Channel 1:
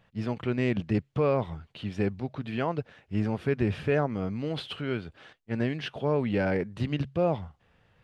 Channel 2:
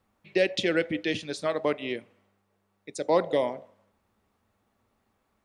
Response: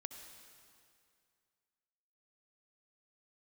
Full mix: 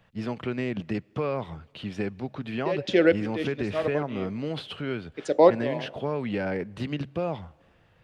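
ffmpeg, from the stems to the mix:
-filter_complex "[0:a]acrossover=split=150|1100[a][b][c];[a]acompressor=threshold=-45dB:ratio=4[d];[b]acompressor=threshold=-29dB:ratio=4[e];[c]acompressor=threshold=-38dB:ratio=4[f];[d][e][f]amix=inputs=3:normalize=0,volume=1.5dB,asplit=3[g][h][i];[h]volume=-18.5dB[j];[1:a]lowpass=6.4k,equalizer=f=420:t=o:w=2.8:g=7,adelay=2300,volume=-0.5dB,asplit=2[k][l];[l]volume=-18.5dB[m];[i]apad=whole_len=341439[n];[k][n]sidechaincompress=threshold=-45dB:ratio=5:attack=35:release=124[o];[2:a]atrim=start_sample=2205[p];[j][m]amix=inputs=2:normalize=0[q];[q][p]afir=irnorm=-1:irlink=0[r];[g][o][r]amix=inputs=3:normalize=0"

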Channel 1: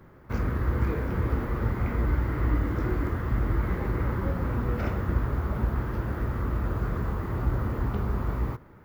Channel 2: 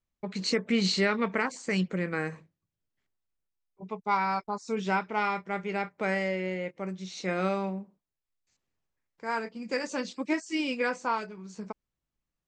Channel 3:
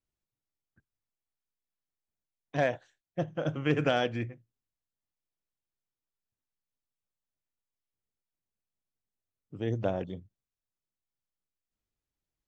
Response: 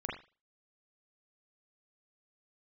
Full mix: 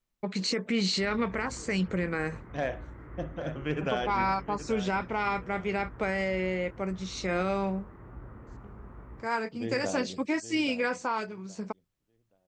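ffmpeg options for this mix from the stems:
-filter_complex "[0:a]lowpass=f=2.6k:w=0.5412,lowpass=f=2.6k:w=1.3066,adelay=700,volume=-16.5dB[a];[1:a]alimiter=limit=-22.5dB:level=0:latency=1:release=45,volume=3dB[b];[2:a]volume=-6dB,asplit=3[c][d][e];[d]volume=-9.5dB[f];[e]volume=-9.5dB[g];[3:a]atrim=start_sample=2205[h];[f][h]afir=irnorm=-1:irlink=0[i];[g]aecho=0:1:824|1648|2472|3296:1|0.23|0.0529|0.0122[j];[a][b][c][i][j]amix=inputs=5:normalize=0,equalizer=f=82:w=1.6:g=-5.5"

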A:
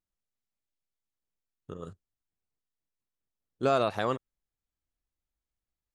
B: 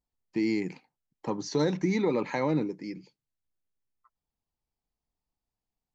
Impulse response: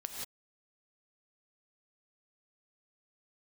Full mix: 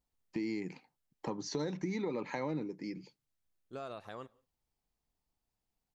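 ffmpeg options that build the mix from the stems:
-filter_complex "[0:a]adelay=100,volume=-16.5dB,asplit=2[a][b];[b]volume=-23.5dB[c];[1:a]volume=2dB,asplit=2[d][e];[e]apad=whole_len=266742[f];[a][f]sidechaincompress=threshold=-43dB:ratio=8:attack=16:release=769[g];[2:a]atrim=start_sample=2205[h];[c][h]afir=irnorm=-1:irlink=0[i];[g][d][i]amix=inputs=3:normalize=0,acompressor=threshold=-39dB:ratio=2.5"

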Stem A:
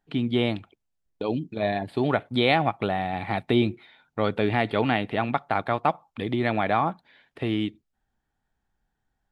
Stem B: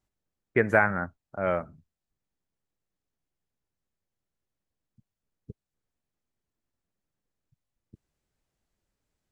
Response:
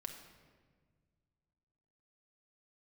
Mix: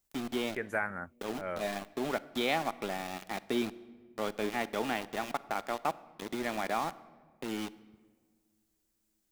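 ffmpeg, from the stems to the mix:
-filter_complex "[0:a]highpass=f=150:w=0.5412,highpass=f=150:w=1.3066,aeval=exprs='val(0)*gte(abs(val(0)),0.0473)':c=same,volume=-11dB,asplit=3[a][b][c];[b]volume=-6.5dB[d];[1:a]aemphasis=mode=production:type=75kf,volume=-3.5dB[e];[c]apad=whole_len=410916[f];[e][f]sidechaincompress=threshold=-43dB:ratio=5:attack=32:release=1310[g];[2:a]atrim=start_sample=2205[h];[d][h]afir=irnorm=-1:irlink=0[i];[a][g][i]amix=inputs=3:normalize=0,equalizer=f=120:w=1.6:g=-6.5"

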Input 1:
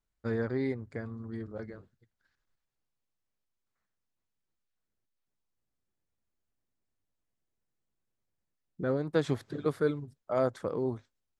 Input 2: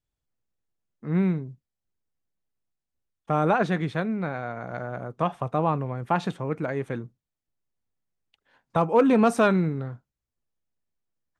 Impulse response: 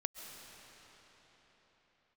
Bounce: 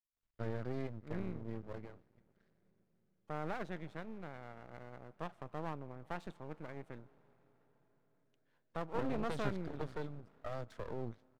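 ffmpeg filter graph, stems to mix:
-filter_complex "[0:a]lowpass=4.8k,acrossover=split=210|3000[a][b][c];[b]acompressor=threshold=-34dB:ratio=10[d];[a][d][c]amix=inputs=3:normalize=0,adelay=150,volume=-2.5dB,asplit=2[e][f];[f]volume=-22dB[g];[1:a]adynamicequalizer=threshold=0.00794:dfrequency=2600:dqfactor=0.7:tfrequency=2600:tqfactor=0.7:attack=5:release=100:ratio=0.375:range=3:mode=cutabove:tftype=highshelf,volume=-17.5dB,asplit=2[h][i];[i]volume=-13dB[j];[2:a]atrim=start_sample=2205[k];[g][j]amix=inputs=2:normalize=0[l];[l][k]afir=irnorm=-1:irlink=0[m];[e][h][m]amix=inputs=3:normalize=0,aeval=exprs='max(val(0),0)':c=same"

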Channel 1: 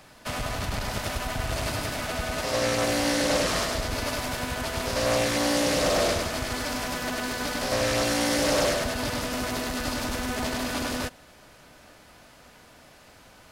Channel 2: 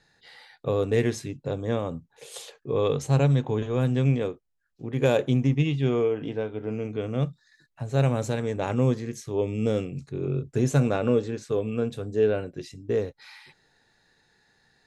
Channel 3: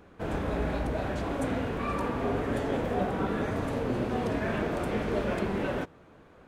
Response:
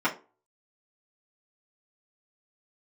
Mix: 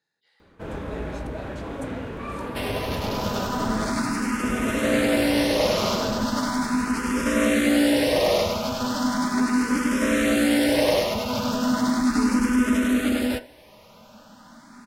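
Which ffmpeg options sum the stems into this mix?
-filter_complex "[0:a]equalizer=f=220:t=o:w=0.36:g=13,asplit=2[a][b];[b]afreqshift=0.37[c];[a][c]amix=inputs=2:normalize=1,adelay=2300,volume=1.5dB,asplit=2[d][e];[e]volume=-13.5dB[f];[1:a]highpass=180,volume=-16.5dB[g];[2:a]adelay=400,volume=-1.5dB,asplit=3[h][i][j];[h]atrim=end=3.92,asetpts=PTS-STARTPTS,afade=t=out:st=3.916:d=0.004:c=hsin[k];[i]atrim=start=3.92:end=4.43,asetpts=PTS-STARTPTS,volume=0[l];[j]atrim=start=4.43,asetpts=PTS-STARTPTS,afade=t=in:d=0.004:c=hsin[m];[k][l][m]concat=n=3:v=0:a=1[n];[3:a]atrim=start_sample=2205[o];[f][o]afir=irnorm=-1:irlink=0[p];[d][g][n][p]amix=inputs=4:normalize=0,bandreject=f=730:w=12"

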